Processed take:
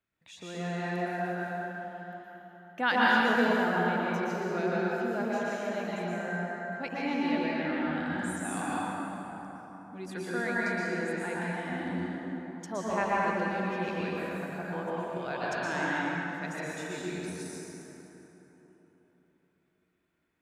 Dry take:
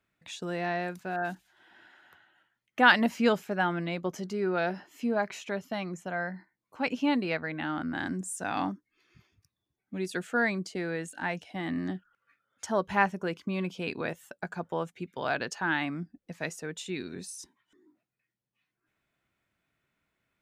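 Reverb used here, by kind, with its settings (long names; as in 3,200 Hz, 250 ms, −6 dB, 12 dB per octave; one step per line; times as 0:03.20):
dense smooth reverb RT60 4 s, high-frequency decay 0.5×, pre-delay 105 ms, DRR −7.5 dB
level −8.5 dB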